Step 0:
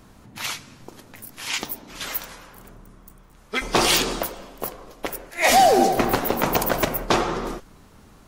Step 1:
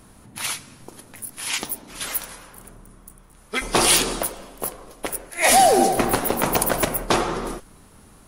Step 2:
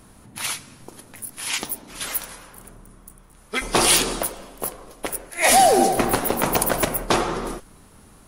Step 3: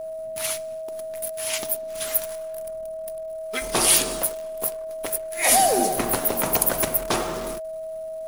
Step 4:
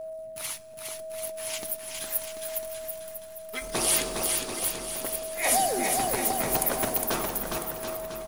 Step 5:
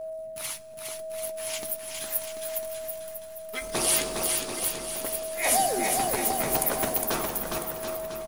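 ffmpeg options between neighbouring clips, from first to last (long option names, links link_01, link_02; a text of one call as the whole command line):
ffmpeg -i in.wav -af "equalizer=frequency=10000:width_type=o:width=0.32:gain=14.5" out.wav
ffmpeg -i in.wav -af anull out.wav
ffmpeg -i in.wav -af "highshelf=frequency=8600:gain=10.5,acrusher=bits=6:dc=4:mix=0:aa=0.000001,aeval=exprs='val(0)+0.0562*sin(2*PI*640*n/s)':channel_layout=same,volume=-5dB" out.wav
ffmpeg -i in.wav -filter_complex "[0:a]aphaser=in_gain=1:out_gain=1:delay=1.2:decay=0.24:speed=0.74:type=sinusoidal,asplit=2[link_01][link_02];[link_02]aecho=0:1:410|738|1000|1210|1378:0.631|0.398|0.251|0.158|0.1[link_03];[link_01][link_03]amix=inputs=2:normalize=0,volume=-7dB" out.wav
ffmpeg -i in.wav -filter_complex "[0:a]asplit=2[link_01][link_02];[link_02]adelay=14,volume=-12dB[link_03];[link_01][link_03]amix=inputs=2:normalize=0" out.wav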